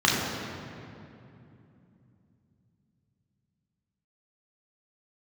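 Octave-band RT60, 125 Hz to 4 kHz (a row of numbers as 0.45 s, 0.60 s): 4.8 s, 4.4 s, 3.0 s, 2.5 s, 2.3 s, 1.7 s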